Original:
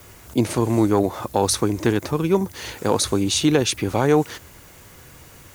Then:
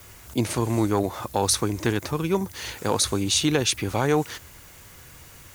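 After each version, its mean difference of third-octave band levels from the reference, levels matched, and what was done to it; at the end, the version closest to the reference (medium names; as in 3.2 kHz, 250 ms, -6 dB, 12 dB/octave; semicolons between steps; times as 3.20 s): 2.5 dB: peaking EQ 340 Hz -5.5 dB 3 oct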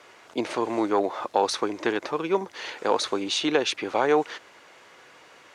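7.5 dB: band-pass 470–3900 Hz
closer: first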